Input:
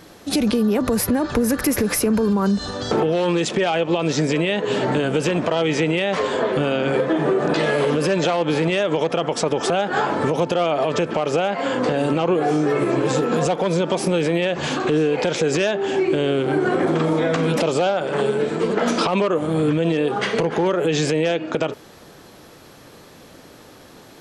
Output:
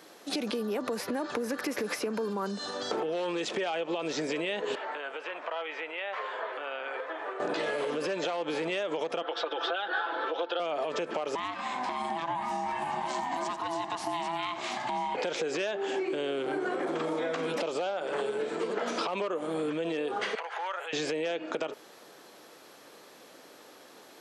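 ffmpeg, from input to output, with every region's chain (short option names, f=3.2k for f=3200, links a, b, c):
-filter_complex "[0:a]asettb=1/sr,asplit=3[a][b][c];[a]atrim=end=4.754[d];[b]atrim=start=4.75:end=7.4,asetpts=PTS-STARTPTS,afade=t=in:d=0.004:c=qsin,afade=t=out:st=2.646:d=0.004:c=qsin,acrossover=split=3400[e][f];[f]acompressor=threshold=-50dB:ratio=4:attack=1:release=60[g];[e][g]amix=inputs=2:normalize=0,highpass=930,aemphasis=mode=reproduction:type=75kf[h];[c]atrim=start=7.396[i];[d][h]acrossfade=d=0.004:c1=hsin:c2=qsin[j];[j][i]acrossfade=d=0.004:c1=qsin:c2=hsin,asettb=1/sr,asplit=3[k][l][m];[k]atrim=end=9.224[n];[l]atrim=start=9.22:end=10.6,asetpts=PTS-STARTPTS,afade=t=in:d=0.004:c=qsin,afade=t=out:st=1.376:d=0.004:c=qsin,highpass=f=350:w=0.5412,highpass=f=350:w=1.3066,equalizer=f=400:t=q:w=4:g=-4,equalizer=f=580:t=q:w=4:g=-4,equalizer=f=1k:t=q:w=4:g=-4,equalizer=f=1.5k:t=q:w=4:g=8,equalizer=f=2.2k:t=q:w=4:g=-6,equalizer=f=3.6k:t=q:w=4:g=9,lowpass=f=3.9k:w=0.5412,lowpass=f=3.9k:w=1.3066,aecho=1:1:5.9:0.59,atrim=end_sample=60858[o];[m]atrim=start=10.596[p];[n][o]acrossfade=d=0.004:c1=hsin:c2=qsin[q];[q][p]acrossfade=d=0.004:c1=qsin:c2=hsin,asettb=1/sr,asplit=3[r][s][t];[r]atrim=end=11.354[u];[s]atrim=start=11.35:end=15.15,asetpts=PTS-STARTPTS,afade=t=in:d=0.004:c=qsin,afade=t=out:st=3.796:d=0.004:c=qsin,equalizer=f=860:t=o:w=0.35:g=-12,aeval=exprs='val(0)*sin(2*PI*500*n/s)':c=same,aecho=1:1:88:0.2,atrim=end_sample=167580[v];[t]atrim=start=15.146[w];[u][v]acrossfade=d=0.004:c1=hsin:c2=qsin[x];[x][w]acrossfade=d=0.004:c1=qsin:c2=hsin,asettb=1/sr,asplit=3[y][z][aa];[y]atrim=end=20.354[ab];[z]atrim=start=20.35:end=20.93,asetpts=PTS-STARTPTS,afade=t=in:d=0.004:c=qsin,afade=t=out:st=0.576:d=0.004:c=qsin,acrossover=split=3300[ac][ad];[ad]acompressor=threshold=-48dB:ratio=4:attack=1:release=60[ae];[ac][ae]amix=inputs=2:normalize=0,highpass=f=780:w=0.5412,highpass=f=780:w=1.3066,bandreject=f=1.1k:w=26[af];[aa]atrim=start=20.926[ag];[ab][af]acrossfade=d=0.004:c1=hsin:c2=qsin[ah];[ah][ag]acrossfade=d=0.004:c1=qsin:c2=hsin,acrossover=split=6000[ai][aj];[aj]acompressor=threshold=-40dB:ratio=4:attack=1:release=60[ak];[ai][ak]amix=inputs=2:normalize=0,highpass=350,acompressor=threshold=-22dB:ratio=6,volume=-6dB"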